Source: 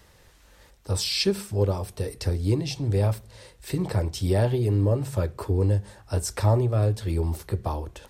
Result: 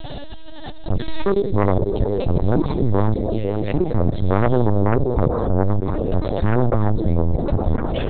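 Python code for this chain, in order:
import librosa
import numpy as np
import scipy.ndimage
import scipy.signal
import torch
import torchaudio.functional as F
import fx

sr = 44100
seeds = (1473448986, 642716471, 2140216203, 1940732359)

p1 = fx.tracing_dist(x, sr, depth_ms=0.25)
p2 = fx.env_phaser(p1, sr, low_hz=340.0, high_hz=2800.0, full_db=-27.0)
p3 = fx.dynamic_eq(p2, sr, hz=170.0, q=1.9, threshold_db=-40.0, ratio=4.0, max_db=6)
p4 = fx.env_flanger(p3, sr, rest_ms=3.7, full_db=-19.5)
p5 = fx.high_shelf(p4, sr, hz=3000.0, db=4.0)
p6 = fx.fixed_phaser(p5, sr, hz=500.0, stages=4)
p7 = fx.rev_schroeder(p6, sr, rt60_s=2.2, comb_ms=38, drr_db=10.5)
p8 = fx.fold_sine(p7, sr, drive_db=13, ceiling_db=-11.5)
p9 = p7 + F.gain(torch.from_numpy(p8), -9.0).numpy()
p10 = fx.level_steps(p9, sr, step_db=21)
p11 = p10 + fx.echo_stepped(p10, sr, ms=252, hz=240.0, octaves=0.7, feedback_pct=70, wet_db=-10, dry=0)
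p12 = fx.lpc_vocoder(p11, sr, seeds[0], excitation='pitch_kept', order=10)
p13 = fx.env_flatten(p12, sr, amount_pct=70)
y = F.gain(torch.from_numpy(p13), 4.0).numpy()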